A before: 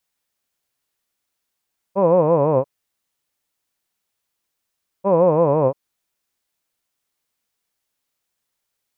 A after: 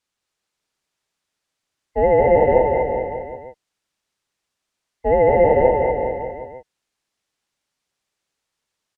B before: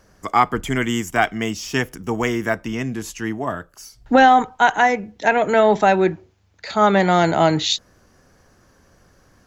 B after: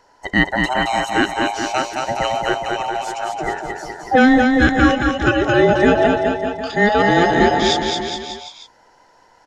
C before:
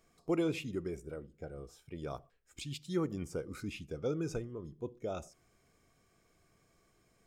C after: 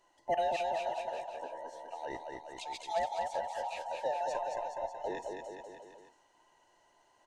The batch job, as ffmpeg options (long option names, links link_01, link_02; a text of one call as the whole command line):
ffmpeg -i in.wav -filter_complex "[0:a]afftfilt=real='real(if(between(b,1,1008),(2*floor((b-1)/48)+1)*48-b,b),0)':imag='imag(if(between(b,1,1008),(2*floor((b-1)/48)+1)*48-b,b),0)*if(between(b,1,1008),-1,1)':win_size=2048:overlap=0.75,lowpass=7600,asplit=2[link_01][link_02];[link_02]aecho=0:1:220|418|596.2|756.6|900.9:0.631|0.398|0.251|0.158|0.1[link_03];[link_01][link_03]amix=inputs=2:normalize=0" out.wav